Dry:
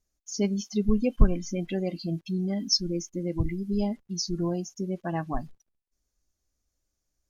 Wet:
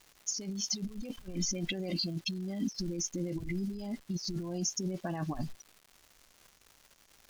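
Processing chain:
parametric band 5,000 Hz +8.5 dB 1.5 octaves
compressor whose output falls as the input rises −35 dBFS, ratio −1
surface crackle 360 per second −43 dBFS
level −2.5 dB

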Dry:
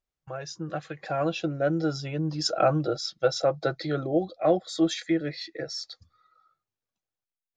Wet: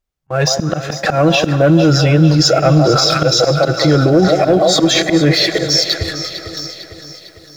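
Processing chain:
low-shelf EQ 170 Hz +6.5 dB
on a send: echo through a band-pass that steps 166 ms, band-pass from 750 Hz, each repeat 0.7 octaves, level −7.5 dB
on the sum: dynamic equaliser 850 Hz, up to −4 dB, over −37 dBFS, Q 1.5
leveller curve on the samples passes 1
volume swells 422 ms
reversed playback
downward compressor, threshold −32 dBFS, peak gain reduction 14.5 dB
reversed playback
noise gate −58 dBFS, range −21 dB
four-comb reverb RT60 3.8 s, combs from 33 ms, DRR 19 dB
boost into a limiter +31.5 dB
feedback echo at a low word length 452 ms, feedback 55%, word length 7 bits, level −12 dB
level −3 dB

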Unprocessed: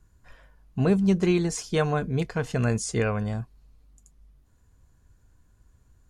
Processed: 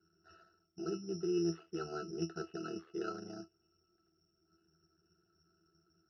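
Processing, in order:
reversed playback
downward compressor 6 to 1, threshold −31 dBFS, peak gain reduction 14 dB
reversed playback
amplitude modulation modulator 78 Hz, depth 85%
resonances in every octave E, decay 0.16 s
bad sample-rate conversion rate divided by 8×, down none, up zero stuff
loudspeaker in its box 380–2,600 Hz, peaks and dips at 390 Hz +9 dB, 640 Hz −9 dB, 970 Hz −10 dB, 1,400 Hz +9 dB, 2,300 Hz −10 dB
level +14.5 dB

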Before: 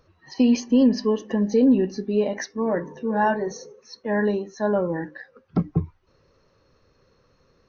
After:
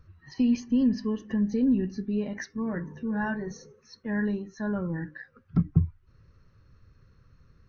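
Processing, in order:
drawn EQ curve 110 Hz 0 dB, 560 Hz −22 dB, 890 Hz −20 dB, 1,400 Hz −10 dB, 3,500 Hz −17 dB
in parallel at −2.5 dB: downward compressor, threshold −44 dBFS, peak gain reduction 21.5 dB
on the sum: level +4.5 dB

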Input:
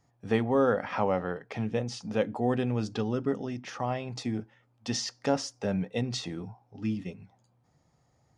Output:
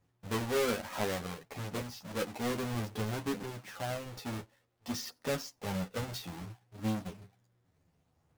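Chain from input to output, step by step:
each half-wave held at its own peak
multi-voice chorus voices 2, 0.29 Hz, delay 11 ms, depth 1.6 ms
level −7 dB

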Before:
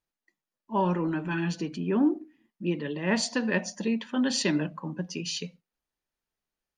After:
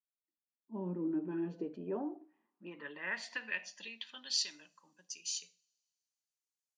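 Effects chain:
fade in at the beginning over 1.88 s
downward compressor, threshold −26 dBFS, peak gain reduction 7.5 dB
coupled-rooms reverb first 0.38 s, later 2 s, from −26 dB, DRR 15 dB
band-pass filter sweep 270 Hz → 7,000 Hz, 0:00.96–0:04.81
level +1 dB

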